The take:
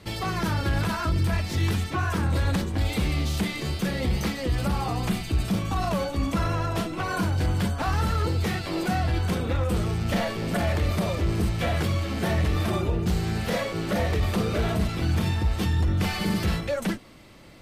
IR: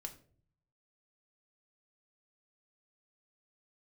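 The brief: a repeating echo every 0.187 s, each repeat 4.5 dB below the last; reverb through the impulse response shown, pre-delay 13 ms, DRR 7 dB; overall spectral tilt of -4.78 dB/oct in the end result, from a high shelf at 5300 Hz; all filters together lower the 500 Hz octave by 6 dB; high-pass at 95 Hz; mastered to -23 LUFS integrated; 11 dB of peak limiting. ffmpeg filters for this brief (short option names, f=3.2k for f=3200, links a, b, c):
-filter_complex "[0:a]highpass=95,equalizer=f=500:t=o:g=-8,highshelf=f=5.3k:g=5.5,alimiter=level_in=1.5dB:limit=-24dB:level=0:latency=1,volume=-1.5dB,aecho=1:1:187|374|561|748|935|1122|1309|1496|1683:0.596|0.357|0.214|0.129|0.0772|0.0463|0.0278|0.0167|0.01,asplit=2[a][b];[1:a]atrim=start_sample=2205,adelay=13[c];[b][c]afir=irnorm=-1:irlink=0,volume=-3.5dB[d];[a][d]amix=inputs=2:normalize=0,volume=8dB"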